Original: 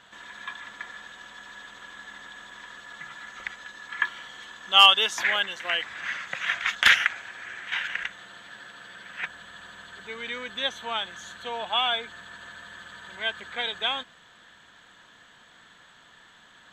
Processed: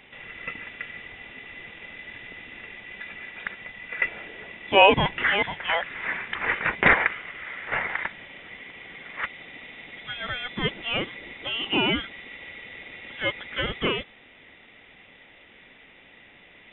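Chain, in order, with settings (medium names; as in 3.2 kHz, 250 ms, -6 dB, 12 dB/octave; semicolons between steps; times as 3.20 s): in parallel at -9 dB: wavefolder -20.5 dBFS; on the sum: frequency inversion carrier 3.7 kHz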